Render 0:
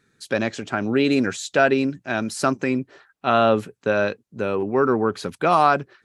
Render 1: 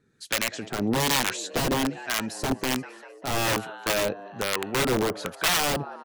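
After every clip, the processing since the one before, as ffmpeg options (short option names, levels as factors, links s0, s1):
-filter_complex "[0:a]asplit=7[s0][s1][s2][s3][s4][s5][s6];[s1]adelay=196,afreqshift=91,volume=0.112[s7];[s2]adelay=392,afreqshift=182,volume=0.0716[s8];[s3]adelay=588,afreqshift=273,volume=0.0457[s9];[s4]adelay=784,afreqshift=364,volume=0.0295[s10];[s5]adelay=980,afreqshift=455,volume=0.0188[s11];[s6]adelay=1176,afreqshift=546,volume=0.012[s12];[s0][s7][s8][s9][s10][s11][s12]amix=inputs=7:normalize=0,aeval=exprs='(mod(5.31*val(0)+1,2)-1)/5.31':c=same,acrossover=split=810[s13][s14];[s13]aeval=exprs='val(0)*(1-0.7/2+0.7/2*cos(2*PI*1.2*n/s))':c=same[s15];[s14]aeval=exprs='val(0)*(1-0.7/2-0.7/2*cos(2*PI*1.2*n/s))':c=same[s16];[s15][s16]amix=inputs=2:normalize=0"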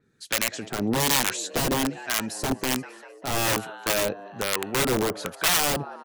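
-af "adynamicequalizer=threshold=0.0141:dfrequency=6000:dqfactor=0.7:tfrequency=6000:tqfactor=0.7:attack=5:release=100:ratio=0.375:range=2.5:mode=boostabove:tftype=highshelf"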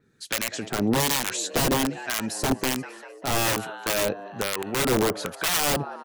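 -af "alimiter=level_in=3.55:limit=0.891:release=50:level=0:latency=1,volume=0.376"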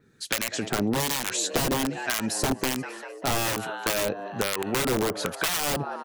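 -af "acompressor=threshold=0.0562:ratio=6,volume=1.5"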